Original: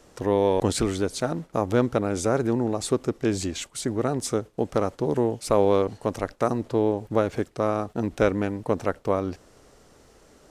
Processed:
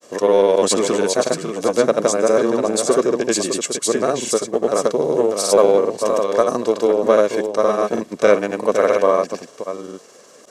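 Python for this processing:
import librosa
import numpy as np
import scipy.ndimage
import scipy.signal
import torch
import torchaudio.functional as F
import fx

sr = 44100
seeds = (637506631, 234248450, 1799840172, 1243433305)

p1 = scipy.signal.sosfilt(scipy.signal.butter(4, 200.0, 'highpass', fs=sr, output='sos'), x)
p2 = p1 + fx.echo_single(p1, sr, ms=591, db=-8.0, dry=0)
p3 = fx.granulator(p2, sr, seeds[0], grain_ms=100.0, per_s=20.0, spray_ms=100.0, spread_st=0)
p4 = p3 + 0.46 * np.pad(p3, (int(1.8 * sr / 1000.0), 0))[:len(p3)]
p5 = 10.0 ** (-19.5 / 20.0) * np.tanh(p4 / 10.0 ** (-19.5 / 20.0))
p6 = p4 + (p5 * 10.0 ** (-6.0 / 20.0))
p7 = fx.peak_eq(p6, sr, hz=6700.0, db=6.5, octaves=0.91)
y = p7 * 10.0 ** (5.0 / 20.0)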